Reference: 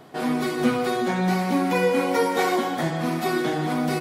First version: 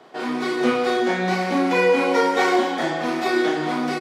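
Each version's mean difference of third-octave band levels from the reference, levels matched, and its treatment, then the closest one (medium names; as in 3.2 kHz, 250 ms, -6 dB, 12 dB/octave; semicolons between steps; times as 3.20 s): 4.5 dB: three-band isolator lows -18 dB, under 260 Hz, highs -17 dB, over 7.3 kHz; level rider gain up to 3 dB; doubling 33 ms -4 dB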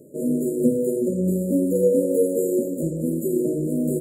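15.5 dB: high-pass 200 Hz 6 dB/octave; AM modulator 98 Hz, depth 15%; brick-wall FIR band-stop 620–6800 Hz; trim +5.5 dB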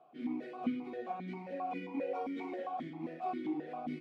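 11.5 dB: tilt EQ -1.5 dB/octave; flange 1.3 Hz, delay 5.6 ms, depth 4.5 ms, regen +74%; stepped vowel filter 7.5 Hz; trim -3 dB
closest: first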